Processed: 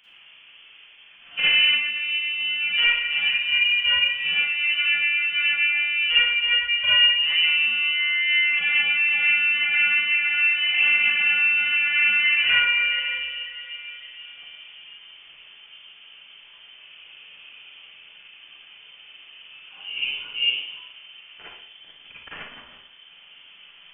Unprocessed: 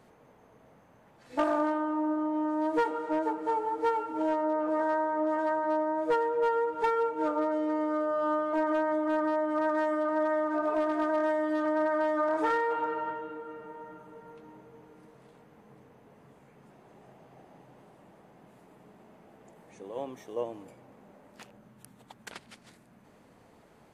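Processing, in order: inverted band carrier 3300 Hz; Schroeder reverb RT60 0.64 s, DRR -9 dB

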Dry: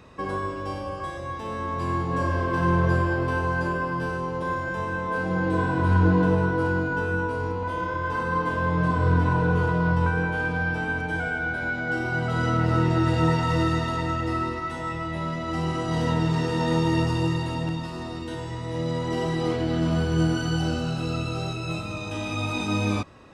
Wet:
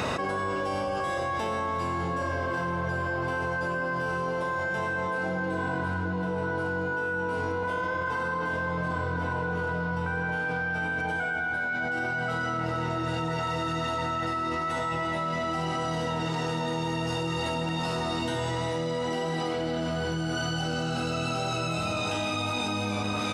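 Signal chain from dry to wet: HPF 290 Hz 6 dB/oct; comb 1.4 ms, depth 30%; on a send: echo with dull and thin repeats by turns 0.175 s, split 1500 Hz, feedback 77%, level -10.5 dB; on the sum: fast leveller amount 100%; gain -8.5 dB

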